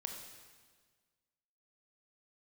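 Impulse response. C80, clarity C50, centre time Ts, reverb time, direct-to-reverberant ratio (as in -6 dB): 6.0 dB, 4.5 dB, 44 ms, 1.6 s, 3.0 dB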